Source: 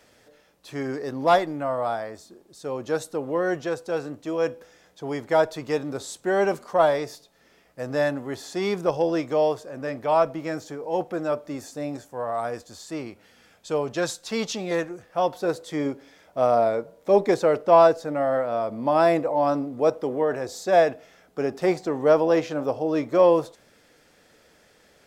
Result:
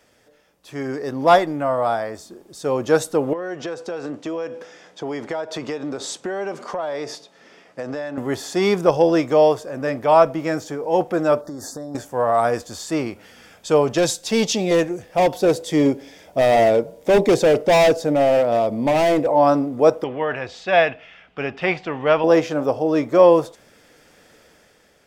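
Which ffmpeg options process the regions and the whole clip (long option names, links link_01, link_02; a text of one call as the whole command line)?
ffmpeg -i in.wav -filter_complex "[0:a]asettb=1/sr,asplit=3[link_01][link_02][link_03];[link_01]atrim=end=3.334[link_04];[link_02]atrim=start=3.33:end=8.18,asetpts=PTS-STARTPTS,afade=type=in:duration=0.004:curve=qsin,afade=type=out:start_time=4.846:duration=0.004:curve=qsin,highpass=180,lowpass=6400,acompressor=threshold=-34dB:ratio=8:attack=3.2:release=140:knee=1:detection=peak[link_05];[link_03]atrim=start=8.176[link_06];[link_04][link_05]acrossfade=duration=0.004:curve1=hsin:curve2=qsin[link_07];[link_07][link_06]acrossfade=duration=0.004:curve1=qsin:curve2=hsin,asettb=1/sr,asplit=3[link_08][link_09][link_10];[link_08]atrim=end=11.414[link_11];[link_09]atrim=start=11.41:end=11.95,asetpts=PTS-STARTPTS,afade=type=in:duration=0.004:curve=qsin,afade=type=out:start_time=0.536:duration=0.004:curve=qsin,acompressor=threshold=-37dB:ratio=16:attack=3.2:release=140:knee=1:detection=peak,asuperstop=centerf=2600:order=8:qfactor=1.3[link_12];[link_10]atrim=start=11.946[link_13];[link_11][link_12]acrossfade=duration=0.004:curve1=hsin:curve2=qsin[link_14];[link_14][link_13]acrossfade=duration=0.004:curve1=qsin:curve2=hsin,asettb=1/sr,asplit=3[link_15][link_16][link_17];[link_15]atrim=end=13.984[link_18];[link_16]atrim=start=13.98:end=19.29,asetpts=PTS-STARTPTS,afade=type=in:duration=0.004:curve=qsin,afade=type=out:start_time=5.306:duration=0.004:curve=qsin,volume=20.5dB,asoftclip=hard,volume=-20.5dB,equalizer=frequency=1300:width=1.6:gain=-9[link_19];[link_17]atrim=start=19.286[link_20];[link_18][link_19]acrossfade=duration=0.004:curve1=hsin:curve2=qsin[link_21];[link_21][link_20]acrossfade=duration=0.004:curve1=qsin:curve2=hsin,asettb=1/sr,asplit=3[link_22][link_23][link_24];[link_22]atrim=end=20.044[link_25];[link_23]atrim=start=20.04:end=22.24,asetpts=PTS-STARTPTS,afade=type=in:duration=0.004:curve=qsin,afade=type=out:start_time=2.196:duration=0.004:curve=qsin,lowpass=frequency=2800:width_type=q:width=3.4,equalizer=frequency=370:width_type=o:width=1.8:gain=-9[link_26];[link_24]atrim=start=22.236[link_27];[link_25][link_26]acrossfade=duration=0.004:curve1=hsin:curve2=qsin[link_28];[link_28][link_27]acrossfade=duration=0.004:curve1=qsin:curve2=hsin,bandreject=frequency=4100:width=14,dynaudnorm=framelen=200:gausssize=9:maxgain=11.5dB,volume=-1dB" out.wav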